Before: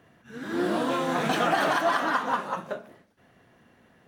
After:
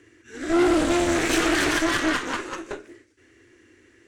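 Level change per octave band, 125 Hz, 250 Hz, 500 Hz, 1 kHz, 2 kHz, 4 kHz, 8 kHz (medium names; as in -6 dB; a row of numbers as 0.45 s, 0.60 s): +2.5 dB, +7.5 dB, +3.5 dB, -3.0 dB, +4.0 dB, +6.0 dB, +13.0 dB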